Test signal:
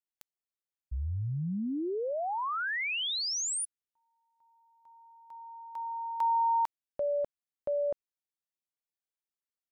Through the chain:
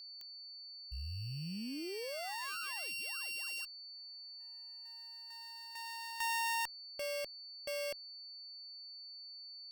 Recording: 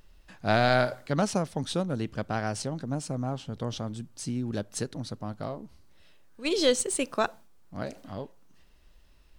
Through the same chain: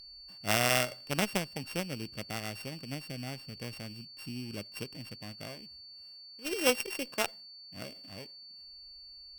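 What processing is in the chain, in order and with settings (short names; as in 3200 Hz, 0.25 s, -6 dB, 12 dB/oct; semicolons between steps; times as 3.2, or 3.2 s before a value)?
sample sorter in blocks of 16 samples; added harmonics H 2 -21 dB, 3 -13 dB, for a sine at -11.5 dBFS; whine 4500 Hz -48 dBFS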